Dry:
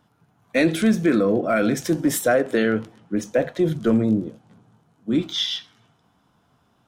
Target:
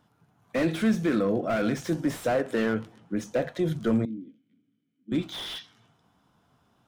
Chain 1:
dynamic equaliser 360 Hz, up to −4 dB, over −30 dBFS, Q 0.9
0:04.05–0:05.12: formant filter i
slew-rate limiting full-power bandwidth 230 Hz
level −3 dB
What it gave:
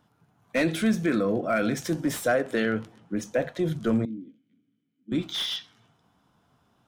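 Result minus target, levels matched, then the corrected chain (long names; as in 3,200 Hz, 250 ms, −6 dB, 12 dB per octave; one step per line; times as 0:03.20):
slew-rate limiting: distortion −8 dB
dynamic equaliser 360 Hz, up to −4 dB, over −30 dBFS, Q 0.9
0:04.05–0:05.12: formant filter i
slew-rate limiting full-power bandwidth 81 Hz
level −3 dB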